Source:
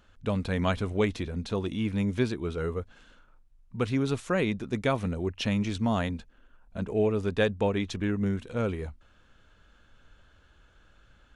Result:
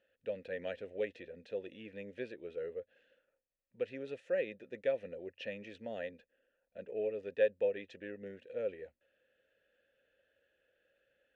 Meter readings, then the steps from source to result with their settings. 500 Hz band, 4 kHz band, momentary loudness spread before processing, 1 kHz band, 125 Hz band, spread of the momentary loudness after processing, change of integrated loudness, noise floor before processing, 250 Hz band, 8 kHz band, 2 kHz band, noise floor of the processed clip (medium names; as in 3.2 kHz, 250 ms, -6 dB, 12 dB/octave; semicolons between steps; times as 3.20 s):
-6.0 dB, -16.5 dB, 8 LU, -20.0 dB, -28.0 dB, 12 LU, -10.5 dB, -61 dBFS, -21.0 dB, under -25 dB, -11.0 dB, -85 dBFS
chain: vowel filter e